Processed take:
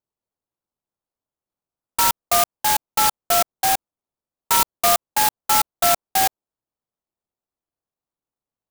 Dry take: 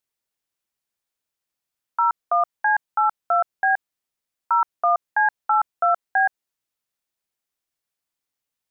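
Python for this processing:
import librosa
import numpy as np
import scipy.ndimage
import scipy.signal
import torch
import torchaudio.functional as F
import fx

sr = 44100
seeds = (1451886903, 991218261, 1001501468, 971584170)

y = scipy.signal.sosfilt(scipy.signal.butter(4, 1400.0, 'lowpass', fs=sr, output='sos'), x)
y = fx.clock_jitter(y, sr, seeds[0], jitter_ms=0.14)
y = y * 10.0 ** (3.0 / 20.0)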